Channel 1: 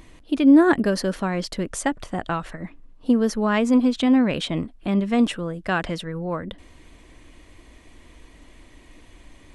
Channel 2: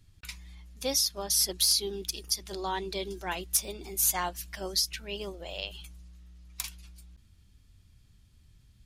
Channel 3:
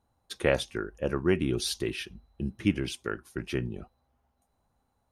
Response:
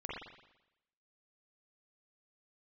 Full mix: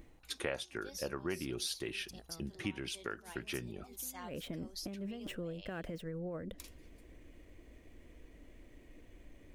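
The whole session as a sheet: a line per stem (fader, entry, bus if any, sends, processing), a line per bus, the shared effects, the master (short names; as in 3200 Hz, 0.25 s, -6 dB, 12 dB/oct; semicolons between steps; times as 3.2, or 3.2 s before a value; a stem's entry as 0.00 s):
-13.5 dB, 0.00 s, no send, median filter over 5 samples; graphic EQ 500/1000/4000 Hz +5/-10/-8 dB; negative-ratio compressor -26 dBFS, ratio -1; auto duck -17 dB, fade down 0.35 s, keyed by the third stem
-16.0 dB, 0.00 s, no send, dry
+3.0 dB, 0.00 s, no send, low shelf 400 Hz -8.5 dB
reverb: off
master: compressor 2.5:1, threshold -40 dBFS, peak gain reduction 14.5 dB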